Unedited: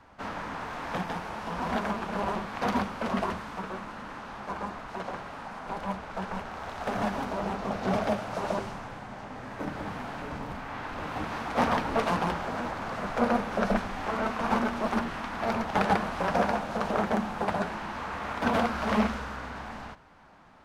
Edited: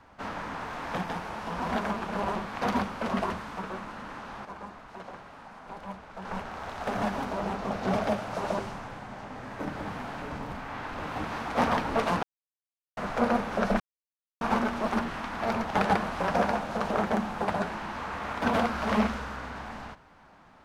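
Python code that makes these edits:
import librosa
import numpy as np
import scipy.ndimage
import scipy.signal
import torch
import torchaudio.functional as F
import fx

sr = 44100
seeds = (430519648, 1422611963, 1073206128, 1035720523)

y = fx.edit(x, sr, fx.clip_gain(start_s=4.45, length_s=1.8, db=-7.0),
    fx.silence(start_s=12.23, length_s=0.74),
    fx.silence(start_s=13.8, length_s=0.61), tone=tone)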